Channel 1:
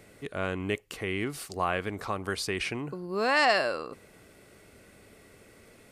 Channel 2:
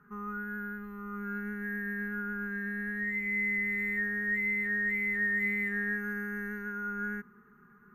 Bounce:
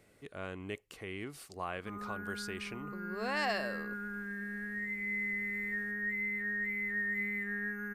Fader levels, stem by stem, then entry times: -10.5, -5.0 dB; 0.00, 1.75 s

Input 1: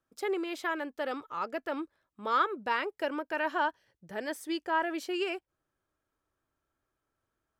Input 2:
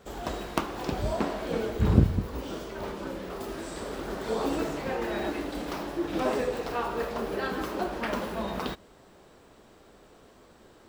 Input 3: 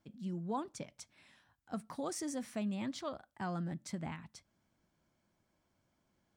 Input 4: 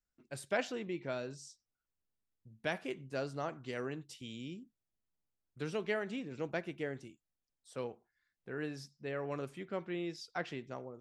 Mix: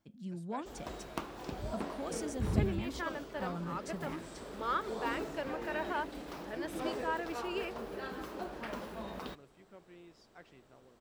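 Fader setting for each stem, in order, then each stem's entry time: -7.0, -10.5, -2.0, -17.0 dB; 2.35, 0.60, 0.00, 0.00 s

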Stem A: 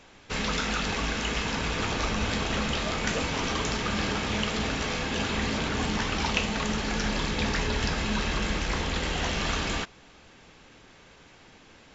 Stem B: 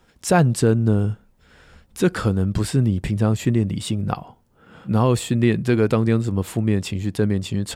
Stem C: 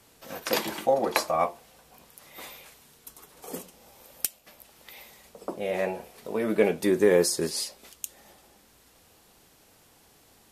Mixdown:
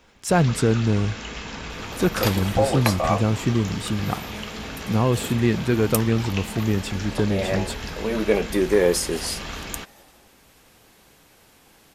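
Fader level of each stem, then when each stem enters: -5.0, -2.5, +2.0 dB; 0.00, 0.00, 1.70 s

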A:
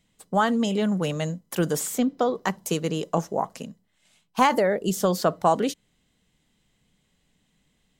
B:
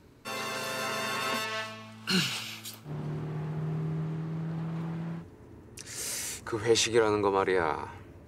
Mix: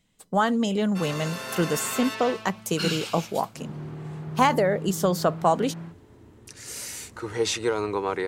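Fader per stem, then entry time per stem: -0.5, -1.0 dB; 0.00, 0.70 s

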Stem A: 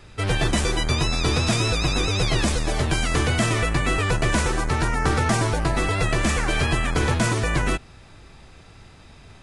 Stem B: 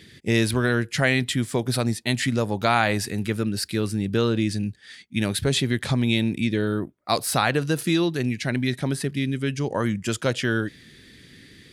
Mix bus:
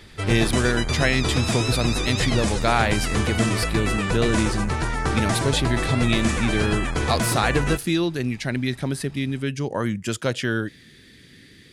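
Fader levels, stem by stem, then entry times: -2.5, -0.5 dB; 0.00, 0.00 s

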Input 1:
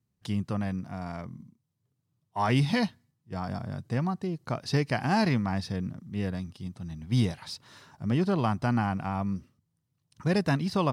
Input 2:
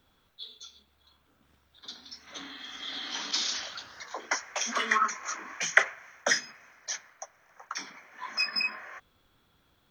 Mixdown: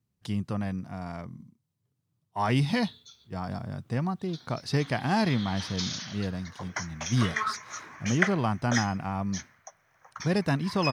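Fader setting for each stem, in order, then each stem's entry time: -0.5, -4.5 dB; 0.00, 2.45 s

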